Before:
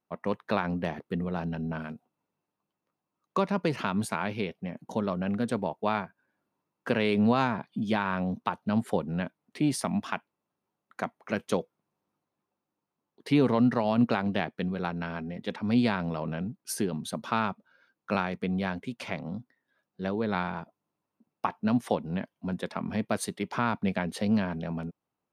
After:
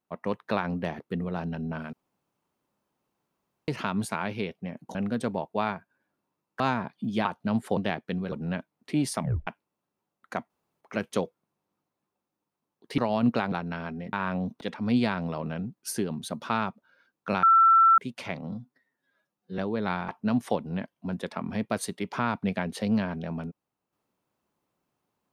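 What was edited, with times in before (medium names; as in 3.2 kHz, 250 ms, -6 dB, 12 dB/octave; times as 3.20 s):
1.93–3.68 s: room tone
4.95–5.23 s: delete
6.88–7.34 s: delete
7.99–8.47 s: move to 15.43 s
9.88 s: tape stop 0.26 s
11.17 s: insert room tone 0.31 s
13.34–13.73 s: delete
14.27–14.82 s: move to 8.99 s
18.25–18.80 s: bleep 1.34 kHz -14.5 dBFS
19.34–20.05 s: stretch 1.5×
20.55–21.48 s: delete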